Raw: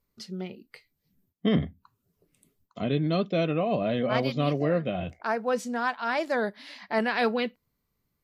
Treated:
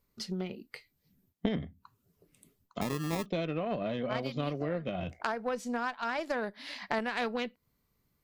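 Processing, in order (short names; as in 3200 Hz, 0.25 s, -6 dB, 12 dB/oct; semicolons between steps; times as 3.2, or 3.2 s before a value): compressor 5:1, threshold -35 dBFS, peak gain reduction 15 dB; added harmonics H 2 -19 dB, 3 -15 dB, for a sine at -22 dBFS; 2.81–3.26 sample-rate reducer 1500 Hz, jitter 0%; gain +9 dB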